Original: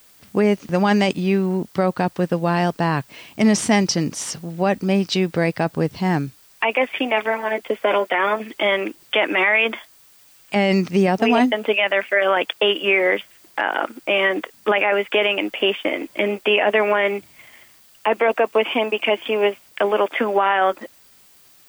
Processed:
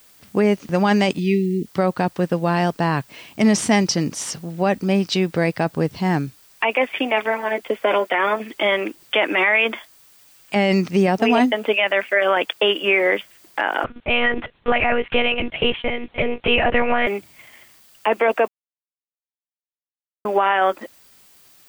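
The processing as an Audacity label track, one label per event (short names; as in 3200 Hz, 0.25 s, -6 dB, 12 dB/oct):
1.190000	1.660000	spectral delete 460–1800 Hz
13.840000	17.070000	monotone LPC vocoder at 8 kHz 240 Hz
18.480000	20.250000	mute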